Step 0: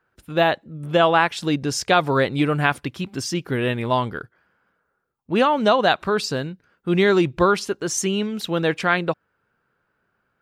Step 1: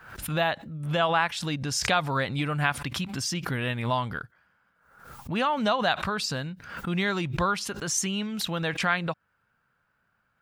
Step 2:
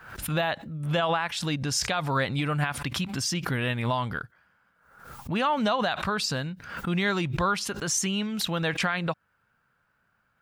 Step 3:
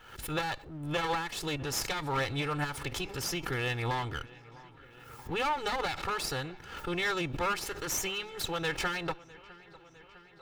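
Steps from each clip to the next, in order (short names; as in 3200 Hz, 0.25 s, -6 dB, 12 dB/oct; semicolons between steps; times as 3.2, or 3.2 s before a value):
in parallel at +3 dB: compressor, threshold -25 dBFS, peak gain reduction 12.5 dB; on the sum: bell 380 Hz -11.5 dB 1 oct; backwards sustainer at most 73 dB/s; gain -8 dB
limiter -17 dBFS, peak gain reduction 8 dB; gain +1.5 dB
minimum comb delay 2.3 ms; resonator 210 Hz, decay 0.36 s, harmonics odd, mix 40%; dark delay 0.655 s, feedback 70%, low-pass 3400 Hz, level -21 dB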